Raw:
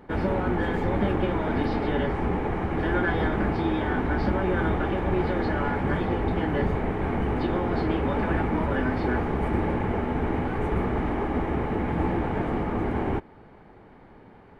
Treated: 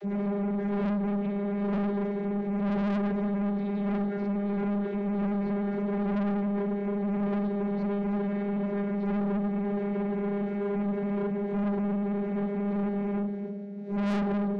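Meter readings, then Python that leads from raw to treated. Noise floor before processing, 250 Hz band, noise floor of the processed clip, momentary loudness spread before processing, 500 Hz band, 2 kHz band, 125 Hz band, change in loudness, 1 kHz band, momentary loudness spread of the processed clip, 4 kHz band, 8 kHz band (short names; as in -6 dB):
-50 dBFS, +0.5 dB, -32 dBFS, 3 LU, -3.5 dB, -12.0 dB, -5.5 dB, -3.0 dB, -9.0 dB, 2 LU, under -10 dB, n/a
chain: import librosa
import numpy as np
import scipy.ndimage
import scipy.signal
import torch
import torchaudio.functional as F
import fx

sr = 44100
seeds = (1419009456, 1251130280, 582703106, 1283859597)

p1 = fx.dmg_wind(x, sr, seeds[0], corner_hz=310.0, level_db=-19.0)
p2 = p1 + fx.echo_single(p1, sr, ms=280, db=-10.5, dry=0)
p3 = fx.vocoder(p2, sr, bands=32, carrier='saw', carrier_hz=202.0)
p4 = fx.high_shelf(p3, sr, hz=3800.0, db=7.5)
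p5 = fx.rider(p4, sr, range_db=10, speed_s=0.5)
p6 = p4 + (p5 * 10.0 ** (-2.0 / 20.0))
p7 = fx.peak_eq(p6, sr, hz=1000.0, db=-14.0, octaves=0.67)
p8 = fx.room_shoebox(p7, sr, seeds[1], volume_m3=620.0, walls='furnished', distance_m=1.0)
p9 = 10.0 ** (-18.0 / 20.0) * np.tanh(p8 / 10.0 ** (-18.0 / 20.0))
y = p9 * 10.0 ** (-8.0 / 20.0)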